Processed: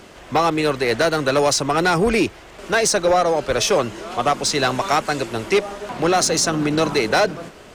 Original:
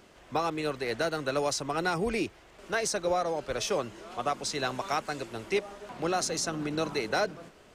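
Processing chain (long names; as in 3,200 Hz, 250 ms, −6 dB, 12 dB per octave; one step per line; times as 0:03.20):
harmonic generator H 8 −38 dB, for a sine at −17.5 dBFS
sine wavefolder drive 3 dB, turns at −17 dBFS
level +6.5 dB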